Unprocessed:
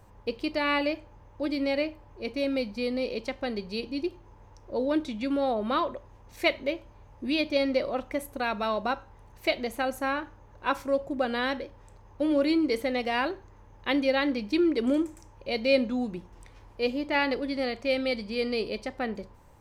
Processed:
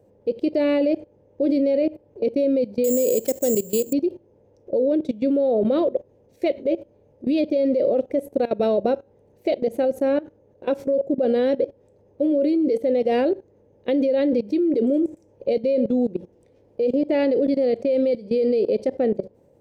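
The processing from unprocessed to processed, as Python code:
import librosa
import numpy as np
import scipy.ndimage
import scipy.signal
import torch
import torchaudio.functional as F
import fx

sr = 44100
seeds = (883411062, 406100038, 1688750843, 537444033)

y = fx.resample_bad(x, sr, factor=6, down='none', up='zero_stuff', at=(2.84, 3.93))
y = scipy.signal.sosfilt(scipy.signal.butter(2, 150.0, 'highpass', fs=sr, output='sos'), y)
y = fx.low_shelf_res(y, sr, hz=740.0, db=12.5, q=3.0)
y = fx.level_steps(y, sr, step_db=19)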